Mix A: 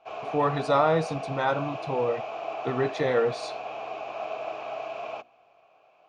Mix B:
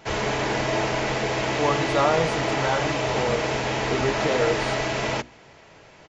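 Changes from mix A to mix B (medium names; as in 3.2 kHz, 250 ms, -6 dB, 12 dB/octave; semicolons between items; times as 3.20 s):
speech: entry +1.25 s; background: remove vowel filter a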